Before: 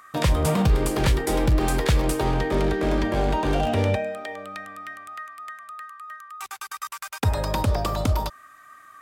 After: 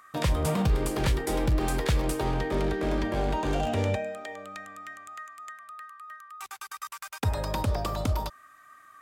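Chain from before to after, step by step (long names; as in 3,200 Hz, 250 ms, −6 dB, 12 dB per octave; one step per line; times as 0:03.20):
0:03.35–0:05.51: parametric band 7,000 Hz +6 dB → +13.5 dB 0.29 octaves
level −5 dB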